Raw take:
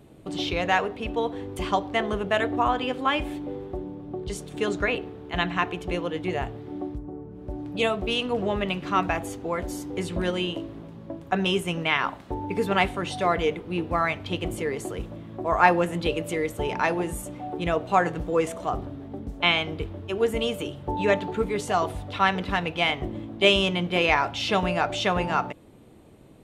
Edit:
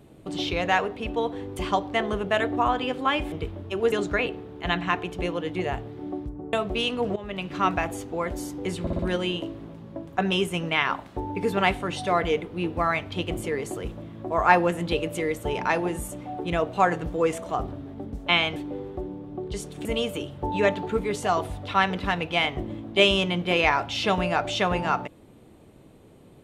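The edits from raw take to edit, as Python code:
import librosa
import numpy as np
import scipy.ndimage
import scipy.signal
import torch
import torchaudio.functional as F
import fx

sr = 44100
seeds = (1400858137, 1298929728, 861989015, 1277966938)

y = fx.edit(x, sr, fx.swap(start_s=3.32, length_s=1.29, other_s=19.7, other_length_s=0.6),
    fx.cut(start_s=7.22, length_s=0.63),
    fx.fade_in_from(start_s=8.48, length_s=0.41, floor_db=-16.5),
    fx.stutter(start_s=10.13, slice_s=0.06, count=4), tone=tone)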